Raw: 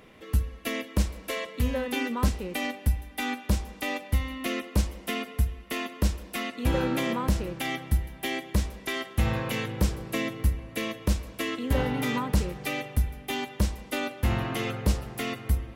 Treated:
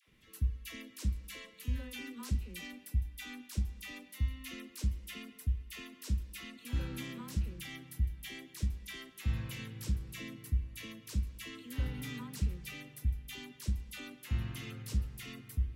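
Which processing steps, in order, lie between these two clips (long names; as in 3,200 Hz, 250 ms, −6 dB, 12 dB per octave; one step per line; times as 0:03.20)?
guitar amp tone stack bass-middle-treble 6-0-2
all-pass dispersion lows, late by 80 ms, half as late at 740 Hz
level +5 dB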